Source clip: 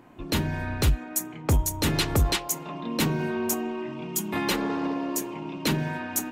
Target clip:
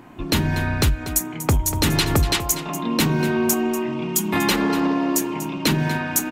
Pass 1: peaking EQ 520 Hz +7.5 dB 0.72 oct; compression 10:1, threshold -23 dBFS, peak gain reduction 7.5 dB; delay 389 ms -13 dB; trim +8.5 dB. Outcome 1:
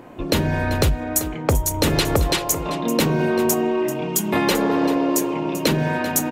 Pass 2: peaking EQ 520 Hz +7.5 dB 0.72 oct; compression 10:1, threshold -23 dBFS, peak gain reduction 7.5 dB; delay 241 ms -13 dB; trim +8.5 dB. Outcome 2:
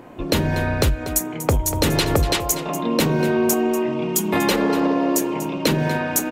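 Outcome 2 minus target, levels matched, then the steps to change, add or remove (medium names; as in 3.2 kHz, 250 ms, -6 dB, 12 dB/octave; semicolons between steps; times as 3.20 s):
500 Hz band +4.0 dB
change: peaking EQ 520 Hz -4 dB 0.72 oct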